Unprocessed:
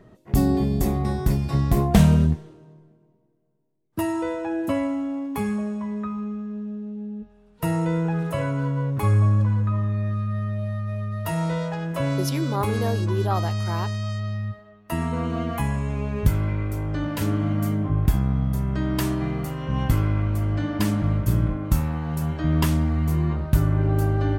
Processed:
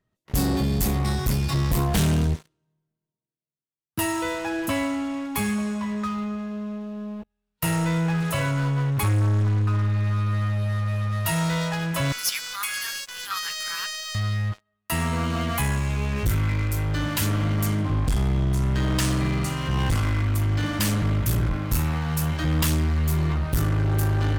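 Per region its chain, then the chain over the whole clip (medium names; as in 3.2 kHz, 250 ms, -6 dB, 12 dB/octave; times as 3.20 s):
12.12–14.15 s: steep high-pass 1.3 kHz + band-stop 3.9 kHz
17.66–20.22 s: low-pass 9.8 kHz 24 dB/octave + feedback delay 61 ms, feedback 48%, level -13 dB
whole clip: amplifier tone stack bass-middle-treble 5-5-5; waveshaping leveller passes 5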